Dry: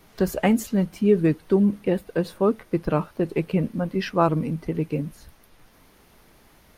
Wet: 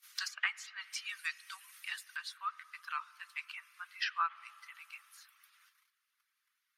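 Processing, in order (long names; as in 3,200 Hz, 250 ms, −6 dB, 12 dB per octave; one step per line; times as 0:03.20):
reverb reduction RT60 0.54 s
high-shelf EQ 3,800 Hz +11.5 dB, from 0:02.16 −2 dB
spring reverb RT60 2.8 s, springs 34/44 ms, chirp 20 ms, DRR 18 dB
noise gate −51 dBFS, range −18 dB
Butterworth high-pass 1,200 Hz 48 dB per octave
dynamic equaliser 5,200 Hz, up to +6 dB, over −47 dBFS, Q 1.2
treble cut that deepens with the level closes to 2,000 Hz, closed at −25.5 dBFS
level −2.5 dB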